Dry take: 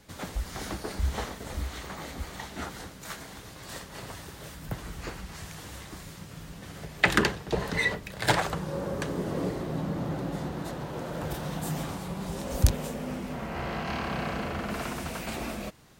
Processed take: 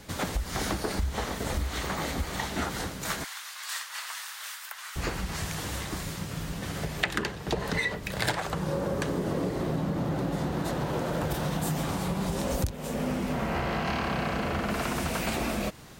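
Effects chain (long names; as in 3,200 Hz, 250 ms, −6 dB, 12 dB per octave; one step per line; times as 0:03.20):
downward compressor 10 to 1, threshold −34 dBFS, peak gain reduction 20.5 dB
0:03.24–0:04.96: high-pass filter 1,100 Hz 24 dB per octave
level +8.5 dB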